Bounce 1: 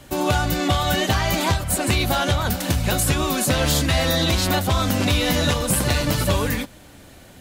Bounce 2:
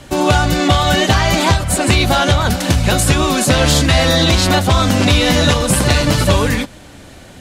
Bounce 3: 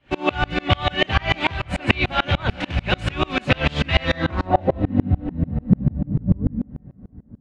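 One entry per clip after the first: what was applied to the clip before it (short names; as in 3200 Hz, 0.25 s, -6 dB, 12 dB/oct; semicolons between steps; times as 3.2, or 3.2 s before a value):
LPF 9400 Hz 12 dB/oct; gain +7.5 dB
low-pass sweep 2600 Hz -> 210 Hz, 4.07–5.05; plate-style reverb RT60 4.9 s, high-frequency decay 0.65×, DRR 15 dB; dB-ramp tremolo swelling 6.8 Hz, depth 31 dB; gain -1.5 dB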